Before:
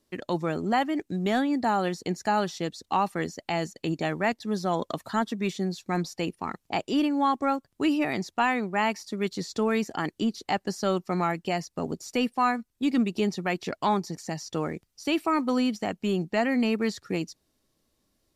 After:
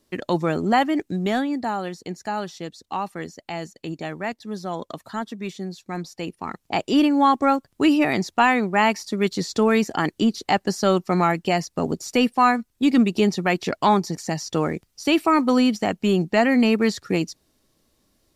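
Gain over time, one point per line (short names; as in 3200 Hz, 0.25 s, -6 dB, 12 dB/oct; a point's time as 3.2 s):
0.97 s +6 dB
1.86 s -2.5 dB
6.07 s -2.5 dB
6.97 s +7 dB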